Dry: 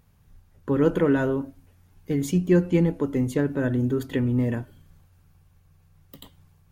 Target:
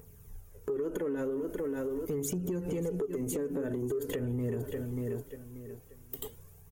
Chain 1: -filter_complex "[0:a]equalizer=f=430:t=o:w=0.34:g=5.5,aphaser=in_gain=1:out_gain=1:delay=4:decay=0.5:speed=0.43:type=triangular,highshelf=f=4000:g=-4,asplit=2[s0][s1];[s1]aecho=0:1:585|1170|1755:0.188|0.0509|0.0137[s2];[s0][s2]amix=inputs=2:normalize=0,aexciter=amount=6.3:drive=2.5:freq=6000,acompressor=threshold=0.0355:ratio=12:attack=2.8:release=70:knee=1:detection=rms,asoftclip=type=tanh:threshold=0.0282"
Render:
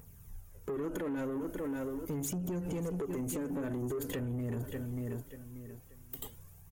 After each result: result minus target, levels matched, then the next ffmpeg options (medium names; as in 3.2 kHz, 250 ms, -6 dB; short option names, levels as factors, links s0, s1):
saturation: distortion +12 dB; 500 Hz band -2.5 dB
-filter_complex "[0:a]equalizer=f=430:t=o:w=0.34:g=5.5,aphaser=in_gain=1:out_gain=1:delay=4:decay=0.5:speed=0.43:type=triangular,highshelf=f=4000:g=-4,asplit=2[s0][s1];[s1]aecho=0:1:585|1170|1755:0.188|0.0509|0.0137[s2];[s0][s2]amix=inputs=2:normalize=0,aexciter=amount=6.3:drive=2.5:freq=6000,acompressor=threshold=0.0355:ratio=12:attack=2.8:release=70:knee=1:detection=rms,asoftclip=type=tanh:threshold=0.075"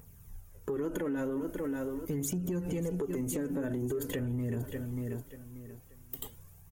500 Hz band -2.5 dB
-filter_complex "[0:a]equalizer=f=430:t=o:w=0.34:g=17,aphaser=in_gain=1:out_gain=1:delay=4:decay=0.5:speed=0.43:type=triangular,highshelf=f=4000:g=-4,asplit=2[s0][s1];[s1]aecho=0:1:585|1170|1755:0.188|0.0509|0.0137[s2];[s0][s2]amix=inputs=2:normalize=0,aexciter=amount=6.3:drive=2.5:freq=6000,acompressor=threshold=0.0355:ratio=12:attack=2.8:release=70:knee=1:detection=rms,asoftclip=type=tanh:threshold=0.075"